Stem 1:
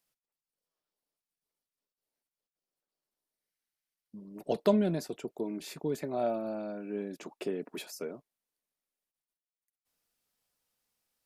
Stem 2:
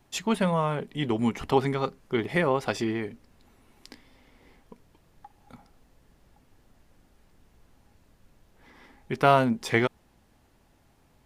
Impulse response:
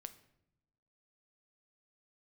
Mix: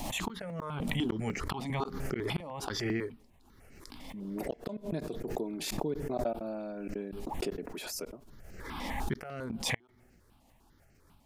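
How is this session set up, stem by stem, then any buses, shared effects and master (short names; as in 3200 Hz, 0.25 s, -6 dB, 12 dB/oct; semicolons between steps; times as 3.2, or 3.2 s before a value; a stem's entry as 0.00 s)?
-2.5 dB, 0.00 s, send -14 dB, step gate "x..x.x.xxxxxx.x" 192 bpm -60 dB
-1.0 dB, 0.00 s, send -15 dB, step phaser 10 Hz 400–3500 Hz; auto duck -13 dB, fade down 1.25 s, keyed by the first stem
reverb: on, pre-delay 7 ms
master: flipped gate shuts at -21 dBFS, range -38 dB; backwards sustainer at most 27 dB/s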